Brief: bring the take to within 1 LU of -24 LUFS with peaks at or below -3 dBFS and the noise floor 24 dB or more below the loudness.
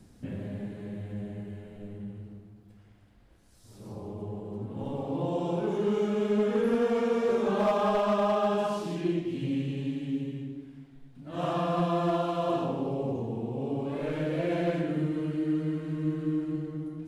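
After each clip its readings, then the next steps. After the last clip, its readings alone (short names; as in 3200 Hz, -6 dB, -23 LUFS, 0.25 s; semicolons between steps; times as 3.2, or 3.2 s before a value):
clipped 0.5%; flat tops at -19.5 dBFS; loudness -30.0 LUFS; peak -19.5 dBFS; loudness target -24.0 LUFS
-> clip repair -19.5 dBFS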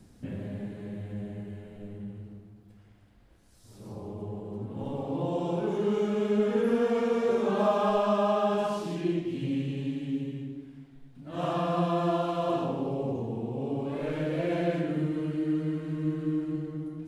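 clipped 0.0%; loudness -30.0 LUFS; peak -13.5 dBFS; loudness target -24.0 LUFS
-> gain +6 dB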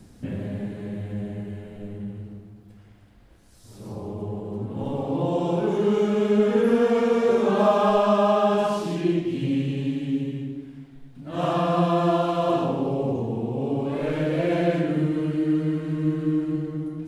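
loudness -24.0 LUFS; peak -7.5 dBFS; noise floor -50 dBFS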